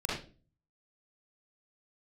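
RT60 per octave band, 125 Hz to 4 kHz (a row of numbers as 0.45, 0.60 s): 0.75, 0.55, 0.40, 0.30, 0.30, 0.30 s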